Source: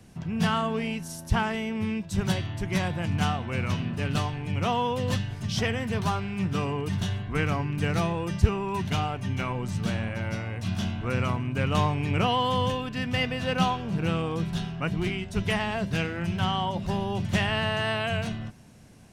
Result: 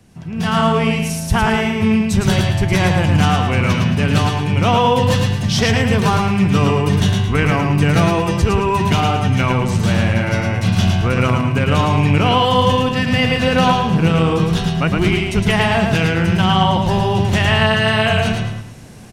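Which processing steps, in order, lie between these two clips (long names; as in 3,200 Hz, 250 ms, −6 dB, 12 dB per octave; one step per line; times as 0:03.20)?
brickwall limiter −17.5 dBFS, peak gain reduction 10.5 dB
repeating echo 110 ms, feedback 34%, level −4 dB
automatic gain control gain up to 11.5 dB
level +1.5 dB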